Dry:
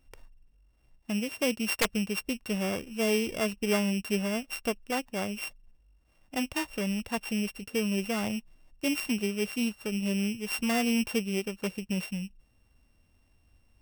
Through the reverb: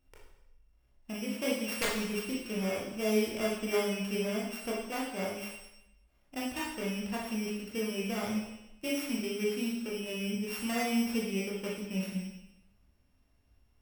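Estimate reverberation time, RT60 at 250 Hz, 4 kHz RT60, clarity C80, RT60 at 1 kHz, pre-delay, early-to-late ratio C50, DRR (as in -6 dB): 0.85 s, 0.90 s, 0.85 s, 5.5 dB, 0.85 s, 19 ms, 2.0 dB, -4.5 dB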